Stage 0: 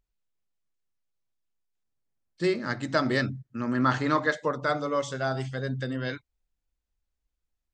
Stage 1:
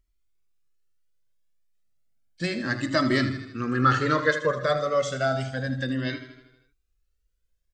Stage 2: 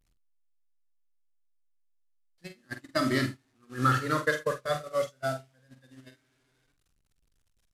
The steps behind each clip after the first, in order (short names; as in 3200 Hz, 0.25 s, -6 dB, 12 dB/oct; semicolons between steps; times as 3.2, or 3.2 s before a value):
bell 890 Hz -15 dB 0.29 oct; on a send: feedback echo 79 ms, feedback 58%, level -11.5 dB; on the sum: cascading flanger rising 0.32 Hz; gain +8 dB
delta modulation 64 kbps, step -30.5 dBFS; gate -23 dBFS, range -31 dB; doubler 46 ms -8.5 dB; gain -4.5 dB